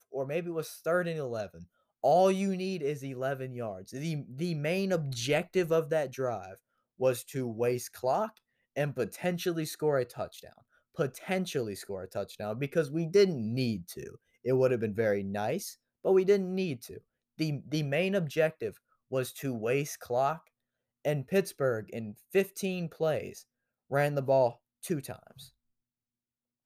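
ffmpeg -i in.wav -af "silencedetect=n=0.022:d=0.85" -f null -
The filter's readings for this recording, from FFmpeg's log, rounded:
silence_start: 25.13
silence_end: 26.66 | silence_duration: 1.53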